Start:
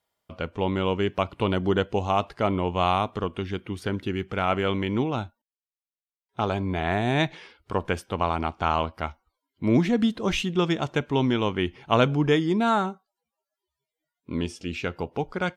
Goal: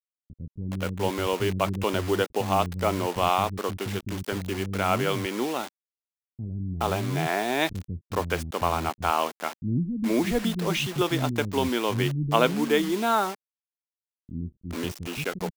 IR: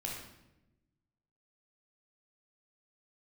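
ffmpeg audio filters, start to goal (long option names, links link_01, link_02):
-filter_complex "[0:a]acrusher=bits=5:mix=0:aa=0.000001,acrossover=split=230[link_01][link_02];[link_02]adelay=420[link_03];[link_01][link_03]amix=inputs=2:normalize=0"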